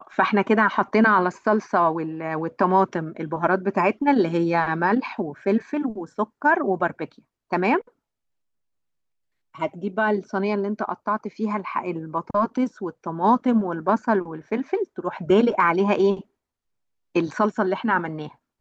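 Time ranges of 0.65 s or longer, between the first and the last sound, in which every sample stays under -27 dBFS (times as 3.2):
7.79–9.61
16.2–17.16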